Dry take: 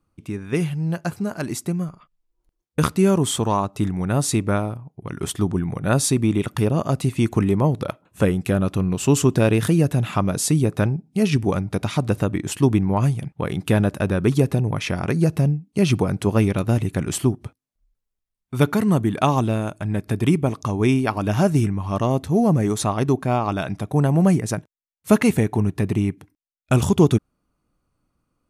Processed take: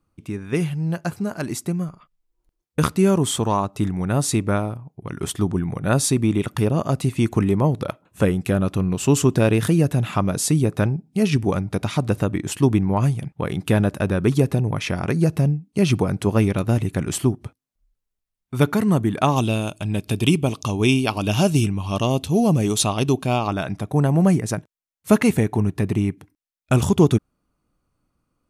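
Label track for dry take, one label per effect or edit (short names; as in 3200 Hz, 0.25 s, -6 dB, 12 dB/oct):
19.360000	23.480000	resonant high shelf 2300 Hz +6 dB, Q 3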